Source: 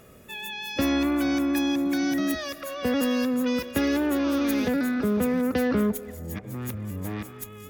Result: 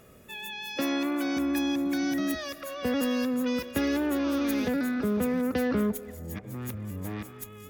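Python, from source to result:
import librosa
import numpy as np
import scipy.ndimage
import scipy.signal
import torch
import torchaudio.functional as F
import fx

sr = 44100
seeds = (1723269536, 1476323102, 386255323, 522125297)

y = fx.highpass(x, sr, hz=250.0, slope=12, at=(0.76, 1.37))
y = y * librosa.db_to_amplitude(-3.0)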